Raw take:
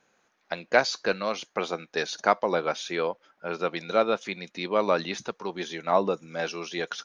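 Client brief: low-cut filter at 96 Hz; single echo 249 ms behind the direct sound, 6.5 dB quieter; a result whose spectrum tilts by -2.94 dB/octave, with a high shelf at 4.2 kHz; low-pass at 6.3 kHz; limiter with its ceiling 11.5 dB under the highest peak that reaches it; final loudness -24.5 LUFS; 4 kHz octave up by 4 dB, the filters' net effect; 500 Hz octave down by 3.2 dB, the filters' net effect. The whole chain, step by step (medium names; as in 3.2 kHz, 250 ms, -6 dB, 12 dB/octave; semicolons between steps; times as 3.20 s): high-pass 96 Hz; low-pass 6.3 kHz; peaking EQ 500 Hz -4 dB; peaking EQ 4 kHz +3.5 dB; treble shelf 4.2 kHz +3.5 dB; peak limiter -16.5 dBFS; delay 249 ms -6.5 dB; trim +6 dB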